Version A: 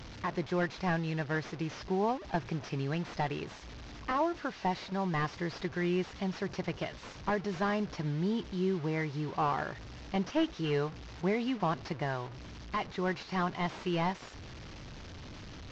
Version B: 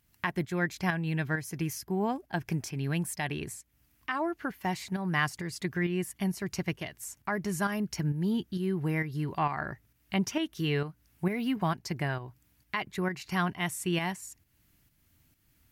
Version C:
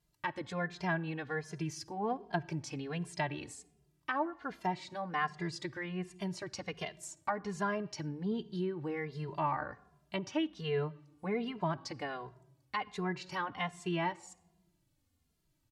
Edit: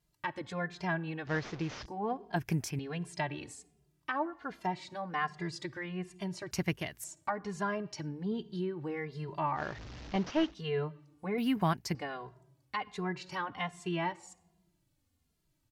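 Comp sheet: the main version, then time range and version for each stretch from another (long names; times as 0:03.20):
C
0:01.27–0:01.86: punch in from A
0:02.36–0:02.79: punch in from B
0:06.51–0:07.04: punch in from B
0:09.59–0:10.50: punch in from A, crossfade 0.10 s
0:11.38–0:11.95: punch in from B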